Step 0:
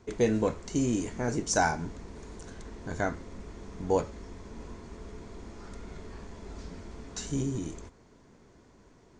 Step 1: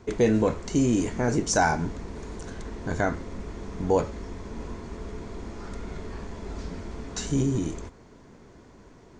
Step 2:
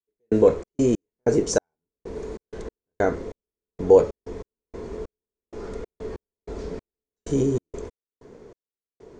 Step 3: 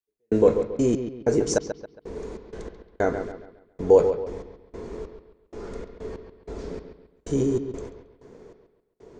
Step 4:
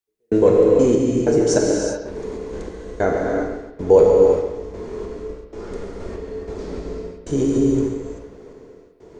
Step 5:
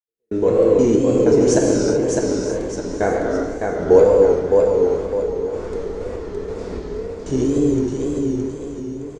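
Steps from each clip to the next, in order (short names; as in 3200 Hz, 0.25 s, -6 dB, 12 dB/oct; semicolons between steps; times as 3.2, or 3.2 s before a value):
high shelf 4800 Hz -4.5 dB; in parallel at +2 dB: limiter -23 dBFS, peak gain reduction 10 dB
bell 450 Hz +13 dB 0.78 oct; step gate "..xx.x..xx." 95 bpm -60 dB; gain -1.5 dB
analogue delay 0.137 s, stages 4096, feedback 37%, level -9 dB; gain -1.5 dB
non-linear reverb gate 0.41 s flat, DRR -1 dB; gain +3 dB
opening faded in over 0.67 s; feedback echo 0.612 s, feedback 42%, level -4 dB; vibrato 2 Hz 98 cents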